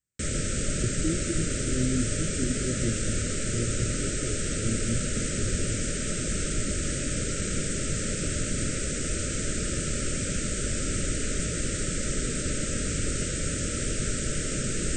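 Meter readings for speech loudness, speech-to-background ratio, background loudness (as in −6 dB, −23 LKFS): −33.5 LKFS, −4.5 dB, −29.0 LKFS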